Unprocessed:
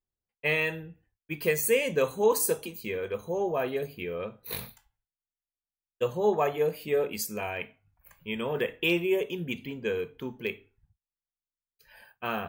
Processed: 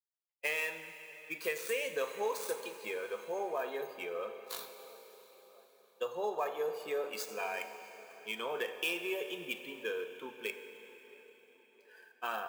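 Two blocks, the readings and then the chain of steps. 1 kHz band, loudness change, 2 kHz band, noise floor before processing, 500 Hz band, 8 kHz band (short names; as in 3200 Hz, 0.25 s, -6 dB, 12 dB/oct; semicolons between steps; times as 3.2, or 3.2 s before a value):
-5.0 dB, -8.5 dB, -5.5 dB, under -85 dBFS, -9.0 dB, -11.0 dB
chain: switching dead time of 0.056 ms; HPF 580 Hz 12 dB/oct; spectral noise reduction 10 dB; compressor 2.5:1, threshold -34 dBFS, peak gain reduction 8 dB; on a send: tape echo 0.666 s, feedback 67%, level -22.5 dB, low-pass 2200 Hz; on the sum: Schroeder reverb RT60 4 s, combs from 33 ms, DRR 8.5 dB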